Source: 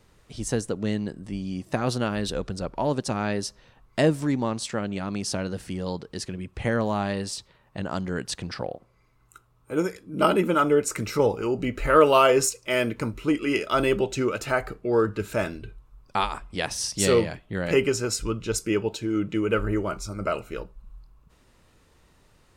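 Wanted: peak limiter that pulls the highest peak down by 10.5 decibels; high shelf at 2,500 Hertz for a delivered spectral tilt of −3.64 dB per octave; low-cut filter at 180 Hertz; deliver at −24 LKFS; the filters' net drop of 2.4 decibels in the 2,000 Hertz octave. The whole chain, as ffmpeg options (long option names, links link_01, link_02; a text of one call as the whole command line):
ffmpeg -i in.wav -af "highpass=180,equalizer=frequency=2000:width_type=o:gain=-5.5,highshelf=frequency=2500:gain=4.5,volume=4.5dB,alimiter=limit=-11dB:level=0:latency=1" out.wav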